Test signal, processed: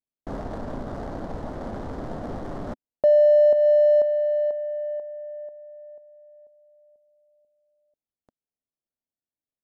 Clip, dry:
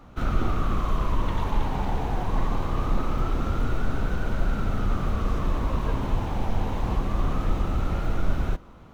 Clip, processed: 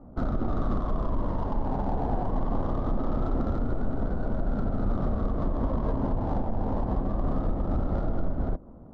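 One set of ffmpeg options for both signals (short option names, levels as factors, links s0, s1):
-af "alimiter=limit=0.119:level=0:latency=1:release=159,adynamicsmooth=sensitivity=3:basefreq=600,equalizer=f=250:t=o:w=0.67:g=6,equalizer=f=630:t=o:w=0.67:g=7,equalizer=f=2500:t=o:w=0.67:g=-11"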